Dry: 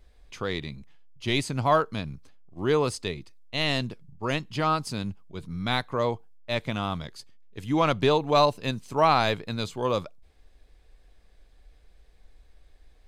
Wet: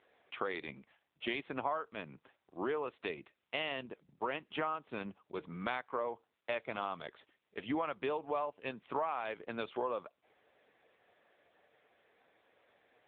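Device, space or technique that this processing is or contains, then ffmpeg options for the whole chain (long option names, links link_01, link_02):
voicemail: -af "highpass=420,lowpass=2800,acompressor=threshold=-38dB:ratio=8,volume=5.5dB" -ar 8000 -c:a libopencore_amrnb -b:a 6700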